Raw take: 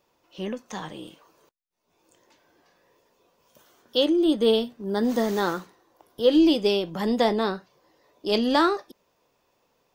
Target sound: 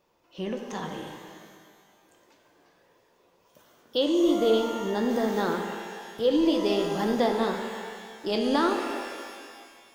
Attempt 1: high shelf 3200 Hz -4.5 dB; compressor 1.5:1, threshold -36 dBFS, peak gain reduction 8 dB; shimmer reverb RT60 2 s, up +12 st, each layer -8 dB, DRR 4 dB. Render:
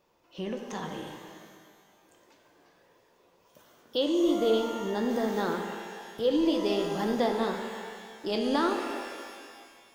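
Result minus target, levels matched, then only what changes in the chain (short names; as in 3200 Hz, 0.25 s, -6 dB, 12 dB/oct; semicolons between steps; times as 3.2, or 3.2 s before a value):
compressor: peak gain reduction +2.5 dB
change: compressor 1.5:1, threshold -28 dBFS, peak gain reduction 5.5 dB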